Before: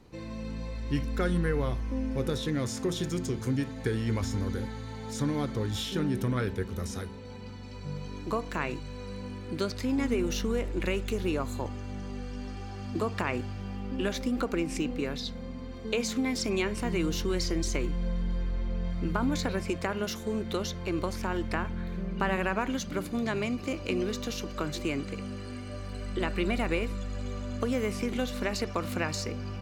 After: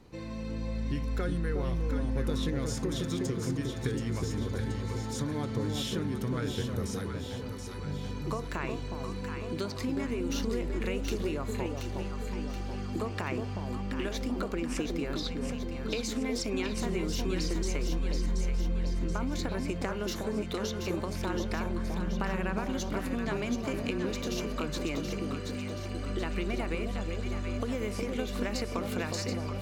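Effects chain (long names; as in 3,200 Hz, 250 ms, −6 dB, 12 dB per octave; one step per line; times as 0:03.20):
downward compressor, threshold −30 dBFS, peak gain reduction 7.5 dB
on a send: delay that swaps between a low-pass and a high-pass 364 ms, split 920 Hz, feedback 72%, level −3 dB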